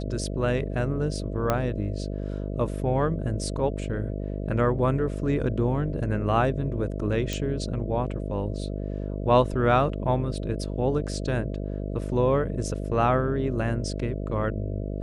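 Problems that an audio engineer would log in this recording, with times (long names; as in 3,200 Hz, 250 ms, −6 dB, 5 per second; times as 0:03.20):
mains buzz 50 Hz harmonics 13 −31 dBFS
0:01.50: click −10 dBFS
0:07.33: click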